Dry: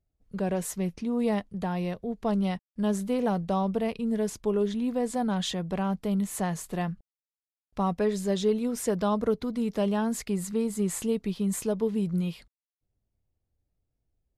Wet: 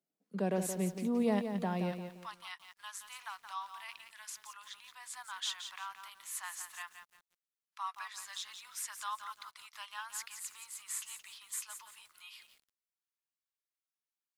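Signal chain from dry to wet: steep high-pass 170 Hz 48 dB/oct, from 1.91 s 1000 Hz; lo-fi delay 0.173 s, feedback 35%, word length 9-bit, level -8 dB; gain -4 dB

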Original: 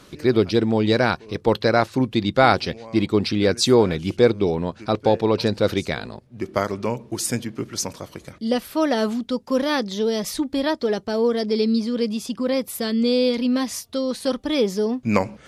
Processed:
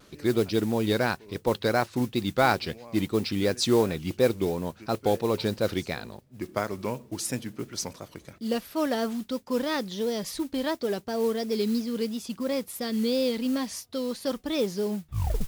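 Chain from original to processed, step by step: tape stop at the end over 0.66 s; modulation noise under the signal 21 dB; vibrato 2.9 Hz 89 cents; gain -6.5 dB

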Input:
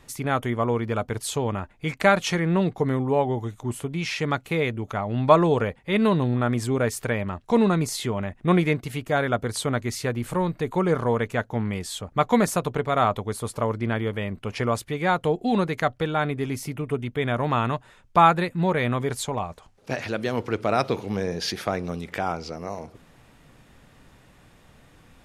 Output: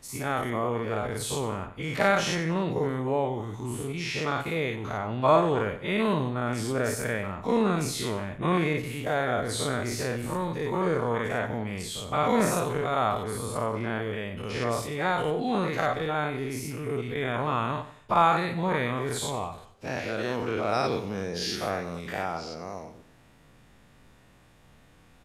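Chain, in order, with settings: spectral dilation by 0.12 s; on a send: feedback echo 92 ms, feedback 33%, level -13 dB; on the sum: gain -8.5 dB

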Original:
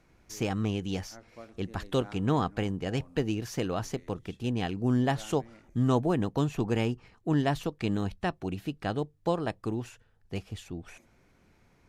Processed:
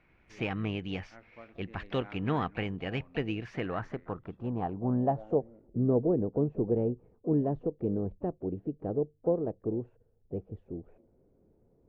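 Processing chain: harmoniser +7 st -17 dB; low-pass sweep 2400 Hz -> 470 Hz, 3.38–5.56; gain -4 dB

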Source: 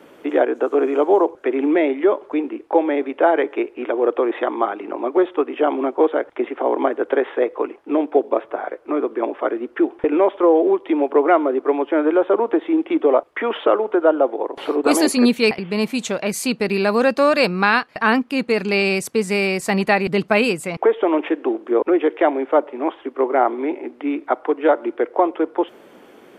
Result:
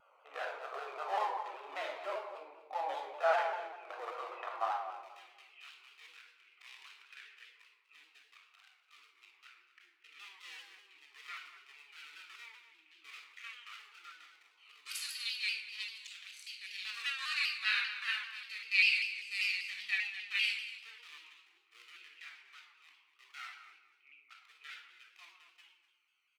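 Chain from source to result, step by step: Wiener smoothing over 25 samples; inverse Chebyshev high-pass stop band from 270 Hz, stop band 60 dB, from 4.96 s stop band from 650 Hz; harmonic-percussive split percussive -13 dB; feedback echo 0.245 s, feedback 24%, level -15 dB; shoebox room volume 3000 m³, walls furnished, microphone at 6.3 m; shaped vibrato saw down 5.1 Hz, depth 100 cents; gain -4.5 dB

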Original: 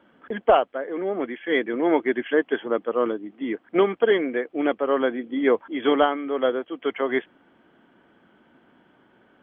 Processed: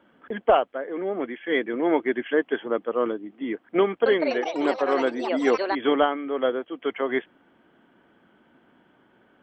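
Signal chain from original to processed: 3.81–6.07 echoes that change speed 0.249 s, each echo +5 st, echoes 3, each echo -6 dB; gain -1.5 dB

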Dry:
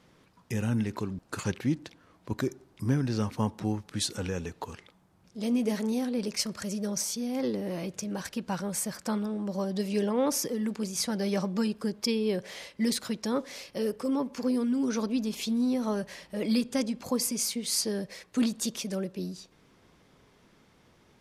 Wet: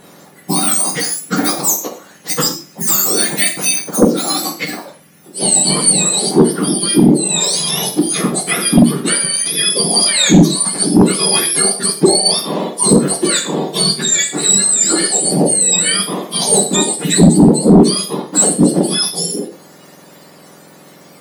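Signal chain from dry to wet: spectrum mirrored in octaves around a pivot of 1400 Hz; in parallel at -2 dB: compressor, threshold -36 dBFS, peak gain reduction 18 dB; on the sum: non-linear reverb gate 0.16 s falling, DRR 3 dB; sine folder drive 5 dB, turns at -8.5 dBFS; gain +7 dB

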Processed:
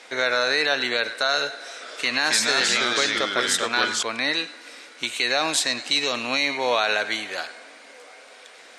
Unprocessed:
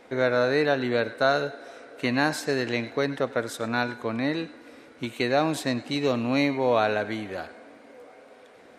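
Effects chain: weighting filter ITU-R 468; limiter -15 dBFS, peak gain reduction 7.5 dB; 1.59–4.03 echoes that change speed 0.219 s, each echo -2 st, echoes 2; gain +4.5 dB

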